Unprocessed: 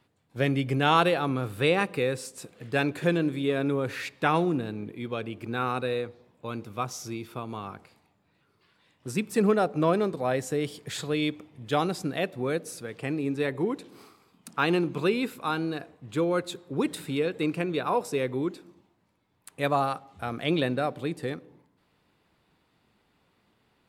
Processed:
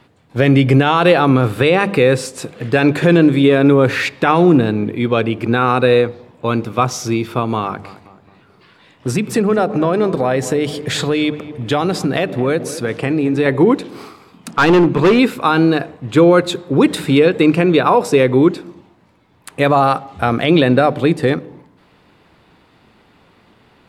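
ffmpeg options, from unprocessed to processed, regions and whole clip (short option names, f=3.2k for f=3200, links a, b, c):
-filter_complex "[0:a]asettb=1/sr,asplit=3[a][b][c];[a]atrim=end=7.624[d];[b]atrim=start=7.62:end=13.46,asetpts=PTS-STARTPTS,afade=t=in:d=0.004:c=qsin,afade=t=out:st=5.836:d=0.004:c=qsin,acompressor=threshold=-30dB:ratio=4:attack=3.2:release=140:knee=1:detection=peak,asplit=2[e][f];[f]adelay=216,lowpass=f=1.2k:p=1,volume=-13.5dB,asplit=2[g][h];[h]adelay=216,lowpass=f=1.2k:p=1,volume=0.54,asplit=2[i][j];[j]adelay=216,lowpass=f=1.2k:p=1,volume=0.54,asplit=2[k][l];[l]adelay=216,lowpass=f=1.2k:p=1,volume=0.54,asplit=2[m][n];[n]adelay=216,lowpass=f=1.2k:p=1,volume=0.54[o];[e][g][i][k][m][o]amix=inputs=6:normalize=0,atrim=end_sample=257544[p];[c]atrim=start=13.456[q];[d][p]acrossfade=d=0.004:c1=hsin:c2=qsin[r];[r][q]acrossfade=d=0.004:c1=qsin:c2=hsin,asettb=1/sr,asplit=3[s][t][u];[s]atrim=end=14.514[v];[t]atrim=start=14.51:end=15.19,asetpts=PTS-STARTPTS,afade=t=in:d=0.004:c=qsin,afade=t=out:st=0.676:d=0.004:c=qsin,highshelf=f=3.4k:g=-6,volume=25dB,asoftclip=hard,volume=-25dB[w];[u]atrim=start=15.186[x];[v][w]acrossfade=d=0.004:c1=hsin:c2=qsin[y];[y][x]acrossfade=d=0.004:c1=qsin:c2=hsin,lowpass=f=4k:p=1,bandreject=f=50:t=h:w=6,bandreject=f=100:t=h:w=6,bandreject=f=150:t=h:w=6,bandreject=f=200:t=h:w=6,alimiter=level_in=19dB:limit=-1dB:release=50:level=0:latency=1,volume=-1dB"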